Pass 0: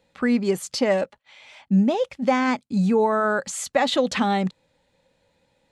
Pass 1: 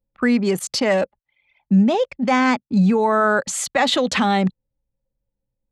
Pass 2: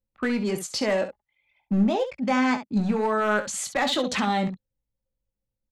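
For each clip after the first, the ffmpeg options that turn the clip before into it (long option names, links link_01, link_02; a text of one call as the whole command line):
ffmpeg -i in.wav -filter_complex "[0:a]anlmdn=1.58,acrossover=split=170|910|5500[link_01][link_02][link_03][link_04];[link_02]alimiter=limit=-19.5dB:level=0:latency=1[link_05];[link_01][link_05][link_03][link_04]amix=inputs=4:normalize=0,volume=5.5dB" out.wav
ffmpeg -i in.wav -af "aeval=exprs='clip(val(0),-1,0.211)':channel_layout=same,aecho=1:1:19|67:0.398|0.299,volume=-6.5dB" out.wav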